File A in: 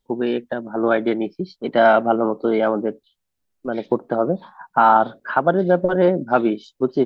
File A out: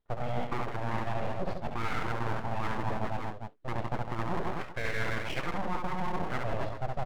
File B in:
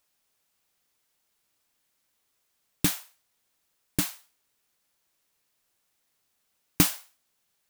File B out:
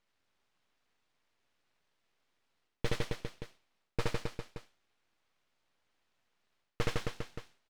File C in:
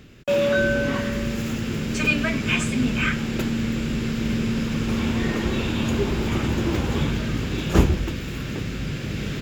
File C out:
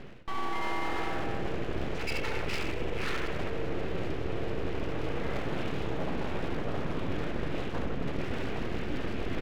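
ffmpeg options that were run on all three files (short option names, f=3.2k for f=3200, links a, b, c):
-af "lowpass=2.2k,alimiter=limit=-11dB:level=0:latency=1:release=202,aecho=1:1:70|157.5|266.9|403.6|574.5:0.631|0.398|0.251|0.158|0.1,aeval=exprs='abs(val(0))':c=same,areverse,acompressor=threshold=-31dB:ratio=10,areverse,volume=4.5dB"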